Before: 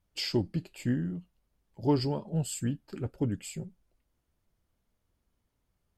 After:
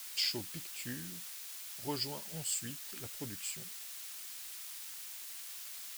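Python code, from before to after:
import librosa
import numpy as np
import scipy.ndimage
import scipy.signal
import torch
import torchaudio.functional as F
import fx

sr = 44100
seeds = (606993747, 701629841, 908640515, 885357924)

y = fx.quant_dither(x, sr, seeds[0], bits=8, dither='triangular')
y = fx.tilt_shelf(y, sr, db=-9.5, hz=970.0)
y = F.gain(torch.from_numpy(y), -7.0).numpy()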